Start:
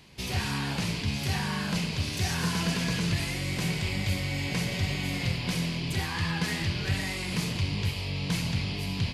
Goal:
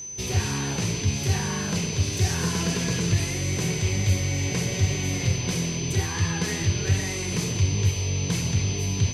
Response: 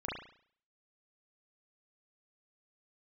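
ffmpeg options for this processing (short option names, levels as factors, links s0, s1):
-af "equalizer=f=100:t=o:w=0.67:g=9,equalizer=f=400:t=o:w=0.67:g=9,equalizer=f=6300:t=o:w=0.67:g=4,aeval=exprs='val(0)+0.02*sin(2*PI*6100*n/s)':c=same"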